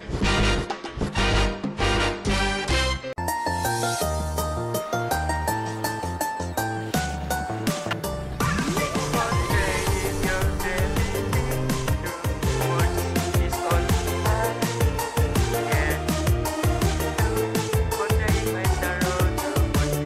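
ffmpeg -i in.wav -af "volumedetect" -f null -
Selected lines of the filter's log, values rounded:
mean_volume: -23.8 dB
max_volume: -12.5 dB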